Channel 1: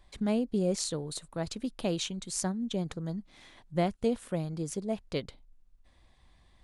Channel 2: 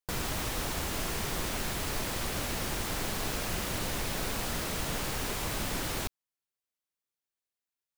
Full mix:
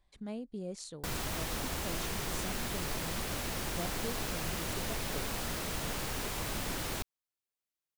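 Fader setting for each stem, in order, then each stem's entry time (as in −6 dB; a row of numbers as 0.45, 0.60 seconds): −12.0, −3.0 decibels; 0.00, 0.95 seconds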